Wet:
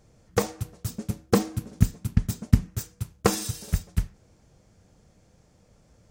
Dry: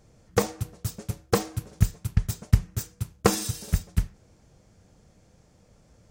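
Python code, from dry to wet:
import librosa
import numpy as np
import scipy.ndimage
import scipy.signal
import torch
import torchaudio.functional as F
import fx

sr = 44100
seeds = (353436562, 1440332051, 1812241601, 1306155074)

y = fx.peak_eq(x, sr, hz=240.0, db=12.5, octaves=0.76, at=(0.88, 2.69))
y = y * librosa.db_to_amplitude(-1.0)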